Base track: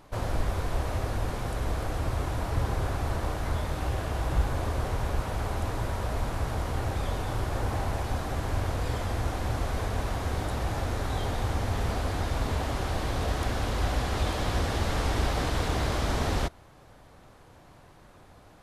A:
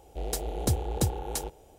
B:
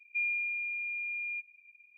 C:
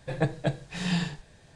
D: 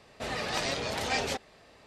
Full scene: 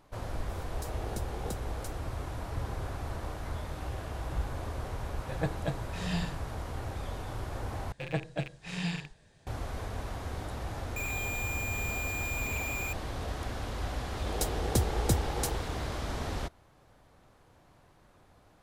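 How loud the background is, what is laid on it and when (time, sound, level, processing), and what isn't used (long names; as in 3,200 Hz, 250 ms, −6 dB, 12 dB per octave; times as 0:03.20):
base track −7.5 dB
0:00.49: mix in A −14 dB + background raised ahead of every attack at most 21 dB per second
0:05.21: mix in C −6 dB
0:07.92: overwrite with C −6.5 dB + loose part that buzzes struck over −37 dBFS, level −24 dBFS
0:10.96: mix in B −0.5 dB + sign of each sample alone
0:14.08: mix in A −1 dB
not used: D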